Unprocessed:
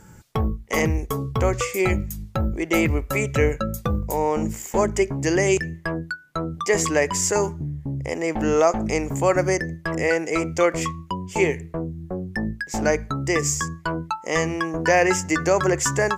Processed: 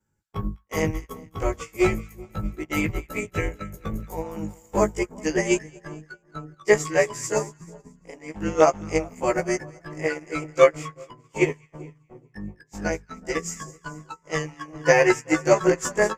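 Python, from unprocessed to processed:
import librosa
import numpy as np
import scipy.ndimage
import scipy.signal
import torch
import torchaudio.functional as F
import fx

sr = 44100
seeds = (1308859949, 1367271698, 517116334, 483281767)

y = fx.frame_reverse(x, sr, frame_ms=38.0)
y = fx.echo_split(y, sr, split_hz=1100.0, low_ms=382, high_ms=217, feedback_pct=52, wet_db=-11)
y = fx.upward_expand(y, sr, threshold_db=-38.0, expansion=2.5)
y = y * 10.0 ** (7.5 / 20.0)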